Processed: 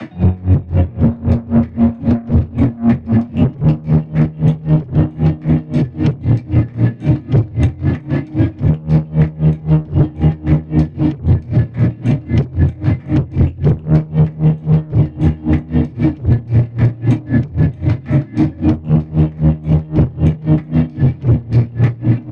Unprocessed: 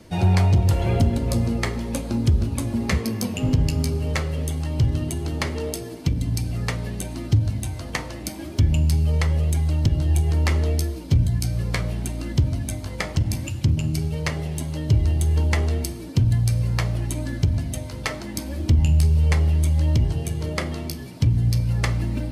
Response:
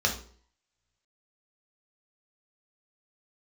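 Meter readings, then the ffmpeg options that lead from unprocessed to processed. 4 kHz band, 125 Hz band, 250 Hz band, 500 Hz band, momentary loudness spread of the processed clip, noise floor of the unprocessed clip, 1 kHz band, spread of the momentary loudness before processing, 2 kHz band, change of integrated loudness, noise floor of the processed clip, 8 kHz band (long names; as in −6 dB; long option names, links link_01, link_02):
can't be measured, +7.5 dB, +13.0 dB, +7.5 dB, 4 LU, −34 dBFS, +3.5 dB, 10 LU, −1.0 dB, +8.0 dB, −33 dBFS, below −15 dB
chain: -filter_complex "[0:a]equalizer=frequency=1900:width=0.32:gain=13,asoftclip=type=hard:threshold=-14dB,highpass=120,lowpass=2700,acrossover=split=220|490[link_01][link_02][link_03];[link_01]acompressor=threshold=-25dB:ratio=4[link_04];[link_02]acompressor=threshold=-40dB:ratio=4[link_05];[link_03]acompressor=threshold=-44dB:ratio=4[link_06];[link_04][link_05][link_06]amix=inputs=3:normalize=0,equalizer=frequency=180:width=0.81:gain=14,aecho=1:1:1001:0.335[link_07];[1:a]atrim=start_sample=2205,asetrate=61740,aresample=44100[link_08];[link_07][link_08]afir=irnorm=-1:irlink=0,acontrast=83,alimiter=level_in=4.5dB:limit=-1dB:release=50:level=0:latency=1,aeval=exprs='val(0)*pow(10,-25*(0.5-0.5*cos(2*PI*3.8*n/s))/20)':channel_layout=same,volume=-3dB"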